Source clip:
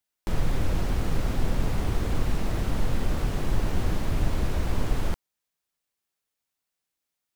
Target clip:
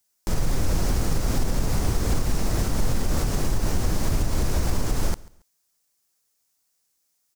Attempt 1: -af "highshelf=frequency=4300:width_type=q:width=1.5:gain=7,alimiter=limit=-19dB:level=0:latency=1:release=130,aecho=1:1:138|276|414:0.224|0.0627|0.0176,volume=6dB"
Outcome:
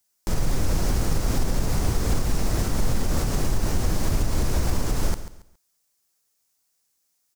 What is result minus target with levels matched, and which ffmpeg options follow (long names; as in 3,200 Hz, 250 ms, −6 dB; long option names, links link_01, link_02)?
echo-to-direct +9.5 dB
-af "highshelf=frequency=4300:width_type=q:width=1.5:gain=7,alimiter=limit=-19dB:level=0:latency=1:release=130,aecho=1:1:138|276:0.075|0.021,volume=6dB"